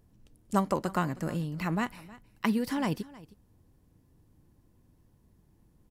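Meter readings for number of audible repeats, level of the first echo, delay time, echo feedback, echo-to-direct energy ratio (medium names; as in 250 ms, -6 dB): 1, -20.0 dB, 315 ms, no regular repeats, -20.0 dB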